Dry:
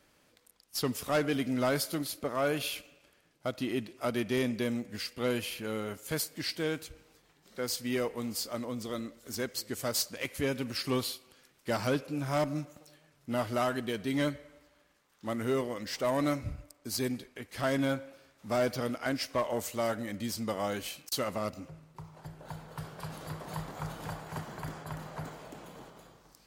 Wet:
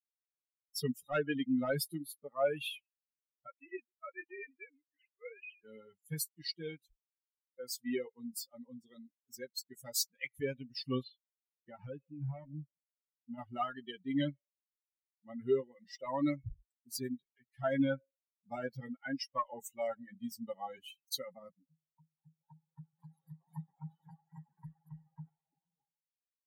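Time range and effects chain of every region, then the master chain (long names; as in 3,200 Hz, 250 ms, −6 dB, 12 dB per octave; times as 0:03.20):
0:03.47–0:05.64: three sine waves on the formant tracks + high-pass filter 850 Hz 6 dB per octave
0:11.03–0:13.38: low-pass filter 3,500 Hz + downward compressor 3 to 1, threshold −31 dBFS
0:21.03–0:24.64: high-pass filter 110 Hz + notch filter 2,700 Hz, Q 5.7
whole clip: spectral dynamics exaggerated over time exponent 3; parametric band 110 Hz −4.5 dB 0.36 octaves; comb filter 7.3 ms, depth 80%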